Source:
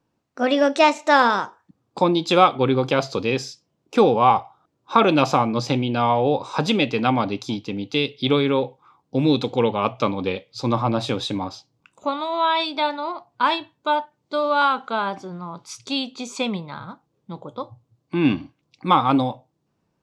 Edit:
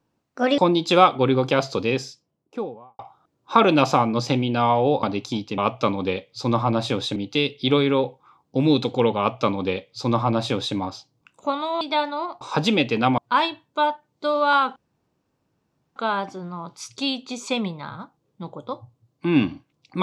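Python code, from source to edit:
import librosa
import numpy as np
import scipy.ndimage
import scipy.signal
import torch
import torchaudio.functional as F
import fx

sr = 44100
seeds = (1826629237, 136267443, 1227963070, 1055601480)

y = fx.studio_fade_out(x, sr, start_s=3.2, length_s=1.19)
y = fx.edit(y, sr, fx.cut(start_s=0.58, length_s=1.4),
    fx.move(start_s=6.43, length_s=0.77, to_s=13.27),
    fx.duplicate(start_s=9.77, length_s=1.58, to_s=7.75),
    fx.cut(start_s=12.4, length_s=0.27),
    fx.insert_room_tone(at_s=14.85, length_s=1.2), tone=tone)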